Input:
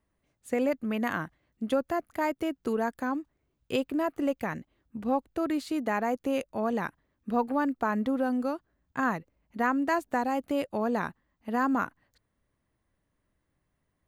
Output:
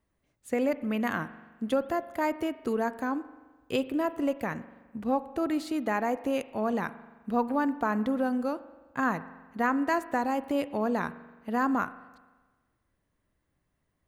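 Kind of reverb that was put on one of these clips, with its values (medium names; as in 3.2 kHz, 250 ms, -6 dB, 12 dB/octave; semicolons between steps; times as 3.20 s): spring tank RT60 1.3 s, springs 42 ms, chirp 80 ms, DRR 14.5 dB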